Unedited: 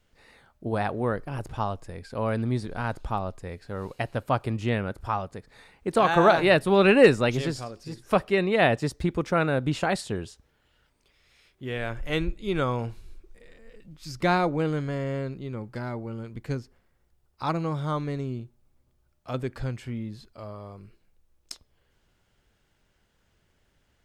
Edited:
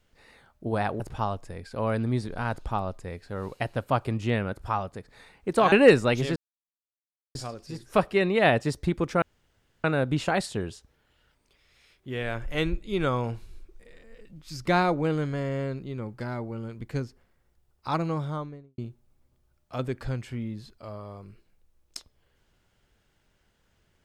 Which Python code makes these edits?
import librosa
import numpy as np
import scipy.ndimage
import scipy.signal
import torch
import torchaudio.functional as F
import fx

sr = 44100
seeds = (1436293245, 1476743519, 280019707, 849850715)

y = fx.studio_fade_out(x, sr, start_s=17.63, length_s=0.7)
y = fx.edit(y, sr, fx.cut(start_s=1.0, length_s=0.39),
    fx.cut(start_s=6.11, length_s=0.77),
    fx.insert_silence(at_s=7.52, length_s=0.99),
    fx.insert_room_tone(at_s=9.39, length_s=0.62), tone=tone)